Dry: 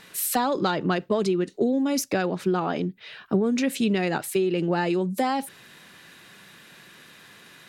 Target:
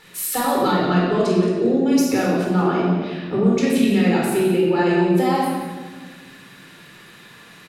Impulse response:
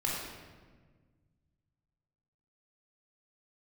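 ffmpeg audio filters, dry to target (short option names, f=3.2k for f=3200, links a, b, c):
-filter_complex "[0:a]aecho=1:1:176:0.251[a];[1:a]atrim=start_sample=2205[b];[a][b]afir=irnorm=-1:irlink=0,volume=-1.5dB"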